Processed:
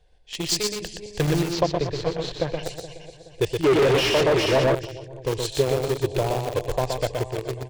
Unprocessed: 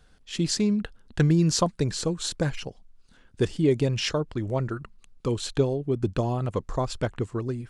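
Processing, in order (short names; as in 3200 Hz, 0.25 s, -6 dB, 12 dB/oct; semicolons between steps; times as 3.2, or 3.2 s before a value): regenerating reverse delay 0.212 s, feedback 65%, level -9 dB; bell 1800 Hz +7 dB 2.7 oct; fixed phaser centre 550 Hz, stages 4; in parallel at -5.5 dB: bit-crush 4-bit; 1.49–2.63 on the sum: air absorption 220 m; on a send: echo 0.122 s -4.5 dB; 3.64–4.75 on the sum: overdrive pedal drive 31 dB, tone 1600 Hz, clips at -9.5 dBFS; mismatched tape noise reduction decoder only; gain -1.5 dB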